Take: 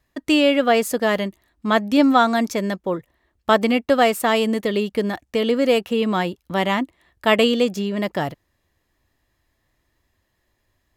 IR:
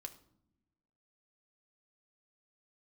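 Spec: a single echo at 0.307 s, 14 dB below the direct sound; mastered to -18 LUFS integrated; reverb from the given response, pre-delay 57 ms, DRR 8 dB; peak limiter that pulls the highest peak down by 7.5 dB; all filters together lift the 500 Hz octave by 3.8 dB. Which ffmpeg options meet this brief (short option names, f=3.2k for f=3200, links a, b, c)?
-filter_complex "[0:a]equalizer=f=500:t=o:g=4.5,alimiter=limit=-7.5dB:level=0:latency=1,aecho=1:1:307:0.2,asplit=2[a][b];[1:a]atrim=start_sample=2205,adelay=57[c];[b][c]afir=irnorm=-1:irlink=0,volume=-3.5dB[d];[a][d]amix=inputs=2:normalize=0,volume=0.5dB"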